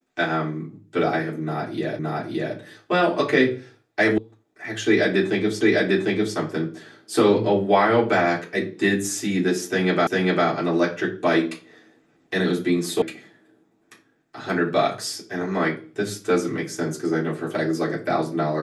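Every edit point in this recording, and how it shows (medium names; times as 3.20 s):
1.99 s: repeat of the last 0.57 s
4.18 s: sound stops dead
5.61 s: repeat of the last 0.75 s
10.07 s: repeat of the last 0.4 s
13.02 s: sound stops dead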